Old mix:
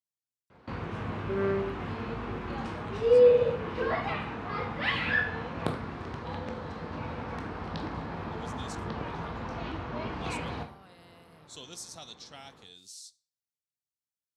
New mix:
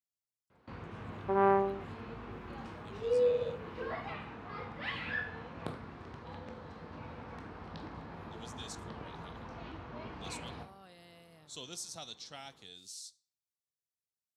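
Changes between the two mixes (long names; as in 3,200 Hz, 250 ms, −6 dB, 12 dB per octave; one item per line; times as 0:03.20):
first sound −9.5 dB
second sound: remove Butterworth band-reject 860 Hz, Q 0.99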